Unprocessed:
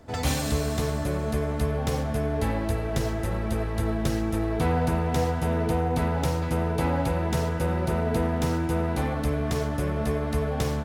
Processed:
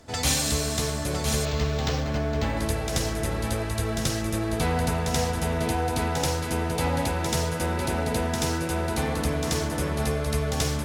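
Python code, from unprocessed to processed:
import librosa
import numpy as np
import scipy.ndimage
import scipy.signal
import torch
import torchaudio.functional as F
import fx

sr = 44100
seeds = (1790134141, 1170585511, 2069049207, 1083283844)

y = fx.peak_eq(x, sr, hz=6800.0, db=11.5, octaves=2.8)
y = y + 10.0 ** (-6.0 / 20.0) * np.pad(y, (int(1009 * sr / 1000.0), 0))[:len(y)]
y = fx.resample_linear(y, sr, factor=4, at=(1.45, 2.57))
y = y * 10.0 ** (-2.0 / 20.0)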